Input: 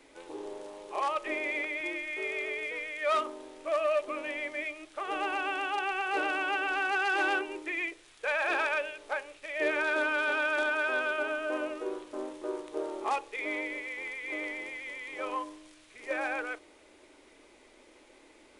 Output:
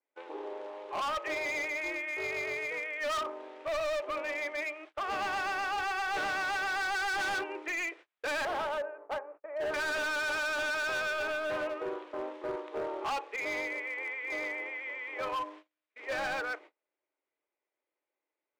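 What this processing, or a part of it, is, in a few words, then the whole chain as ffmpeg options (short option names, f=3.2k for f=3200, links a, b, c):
walkie-talkie: -filter_complex "[0:a]asettb=1/sr,asplit=3[a][b][c];[a]atrim=end=8.454[d];[b]atrim=start=8.45:end=9.74,asetpts=PTS-STARTPTS,afade=t=in:d=0.004:c=qsin,afade=t=out:st=1.286:d=0.004:c=qsin,lowpass=f=1.2k:w=0.5412,lowpass=f=1.2k:w=1.3066[e];[c]atrim=start=9.736[f];[d][e]acrossfade=d=0.004:c1=hsin:c2=qsin[g];[g][f]acrossfade=d=0.004:c1=qsin:c2=hsin,adynamicequalizer=threshold=0.00251:dfrequency=3700:dqfactor=1.9:tfrequency=3700:tqfactor=1.9:attack=5:release=100:ratio=0.375:range=3:mode=cutabove:tftype=bell,highpass=480,lowpass=2.4k,asoftclip=type=hard:threshold=-35dB,agate=range=-34dB:threshold=-54dB:ratio=16:detection=peak,volume=4.5dB"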